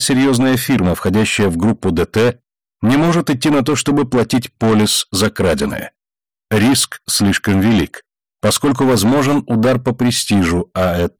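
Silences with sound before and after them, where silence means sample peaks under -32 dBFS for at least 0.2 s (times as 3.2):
2.33–2.83
5.88–6.52
7.99–8.43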